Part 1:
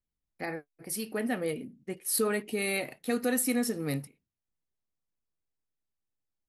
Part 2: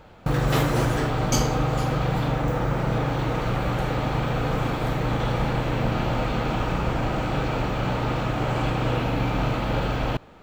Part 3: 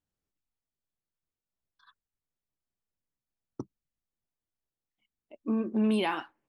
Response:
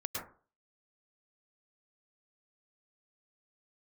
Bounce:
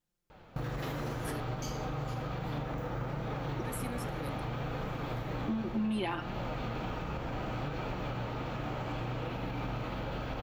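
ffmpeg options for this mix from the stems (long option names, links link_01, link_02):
-filter_complex "[0:a]adelay=350,volume=-11.5dB,asplit=3[link_01][link_02][link_03];[link_01]atrim=end=1.43,asetpts=PTS-STARTPTS,afade=type=out:start_time=1.426:duration=0.004:curve=hsin[link_04];[link_02]atrim=start=1.43:end=3.65,asetpts=PTS-STARTPTS,volume=0[link_05];[link_03]atrim=start=3.65,asetpts=PTS-STARTPTS,afade=type=in:duration=0.004:curve=hsin[link_06];[link_04][link_05][link_06]concat=n=3:v=0:a=1[link_07];[1:a]alimiter=limit=-18.5dB:level=0:latency=1:release=193,flanger=delay=4.6:depth=9.1:regen=70:speed=0.66:shape=triangular,equalizer=frequency=8500:width_type=o:width=0.26:gain=-13,adelay=300,volume=-2dB[link_08];[2:a]aecho=1:1:5.7:0.91,volume=1dB[link_09];[link_07][link_08][link_09]amix=inputs=3:normalize=0,acompressor=threshold=-33dB:ratio=3"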